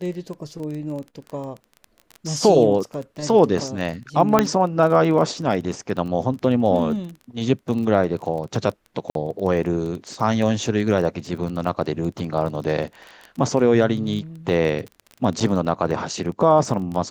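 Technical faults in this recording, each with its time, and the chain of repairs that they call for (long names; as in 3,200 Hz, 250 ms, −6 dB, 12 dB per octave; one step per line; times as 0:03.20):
surface crackle 21 per second −28 dBFS
0:04.39: click −2 dBFS
0:09.10–0:09.15: drop-out 52 ms
0:15.40–0:15.41: drop-out 6.3 ms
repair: click removal
repair the gap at 0:09.10, 52 ms
repair the gap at 0:15.40, 6.3 ms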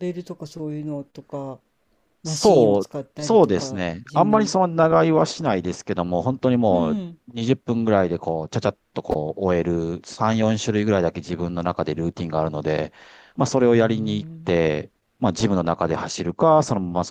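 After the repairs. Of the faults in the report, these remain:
none of them is left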